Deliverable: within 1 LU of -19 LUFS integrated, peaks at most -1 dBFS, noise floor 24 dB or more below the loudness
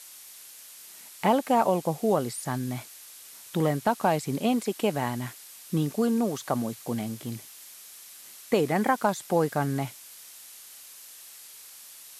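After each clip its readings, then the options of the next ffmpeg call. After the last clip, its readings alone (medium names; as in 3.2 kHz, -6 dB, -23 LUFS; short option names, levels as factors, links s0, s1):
noise floor -48 dBFS; noise floor target -52 dBFS; loudness -27.5 LUFS; peak level -10.5 dBFS; loudness target -19.0 LUFS
-> -af "afftdn=nr=6:nf=-48"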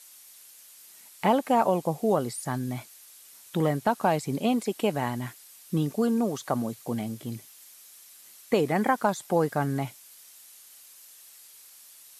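noise floor -52 dBFS; loudness -27.5 LUFS; peak level -10.5 dBFS; loudness target -19.0 LUFS
-> -af "volume=2.66"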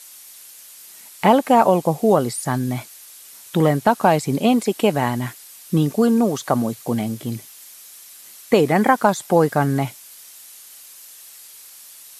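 loudness -19.0 LUFS; peak level -2.0 dBFS; noise floor -43 dBFS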